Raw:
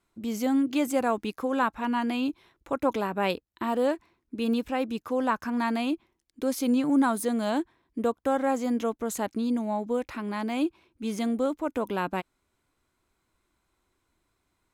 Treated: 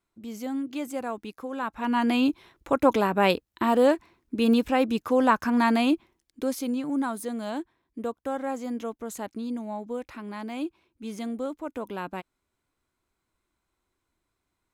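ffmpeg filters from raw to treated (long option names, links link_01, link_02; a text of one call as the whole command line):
ffmpeg -i in.wav -af "volume=5.5dB,afade=type=in:start_time=1.62:duration=0.52:silence=0.251189,afade=type=out:start_time=5.94:duration=0.78:silence=0.298538" out.wav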